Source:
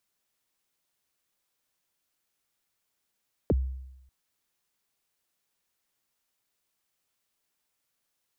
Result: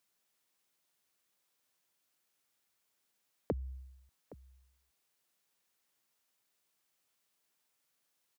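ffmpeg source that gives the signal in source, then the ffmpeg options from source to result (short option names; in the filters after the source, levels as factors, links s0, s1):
-f lavfi -i "aevalsrc='0.119*pow(10,-3*t/0.91)*sin(2*PI*(600*0.032/log(65/600)*(exp(log(65/600)*min(t,0.032)/0.032)-1)+65*max(t-0.032,0)))':d=0.59:s=44100"
-filter_complex "[0:a]highpass=f=130:p=1,acompressor=threshold=0.0178:ratio=2.5,asplit=2[s0][s1];[s1]adelay=816.3,volume=0.126,highshelf=f=4000:g=-18.4[s2];[s0][s2]amix=inputs=2:normalize=0"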